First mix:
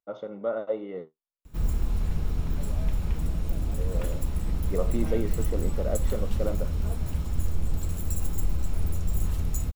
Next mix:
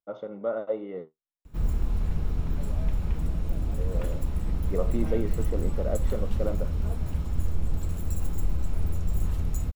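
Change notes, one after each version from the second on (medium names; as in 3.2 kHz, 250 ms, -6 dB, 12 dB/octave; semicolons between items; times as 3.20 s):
master: add treble shelf 3.5 kHz -7 dB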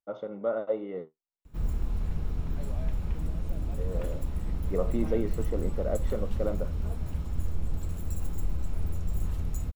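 background -3.5 dB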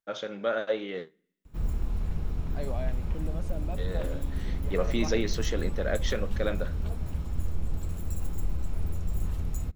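first voice: remove Savitzky-Golay filter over 65 samples; second voice +9.5 dB; reverb: on, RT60 0.65 s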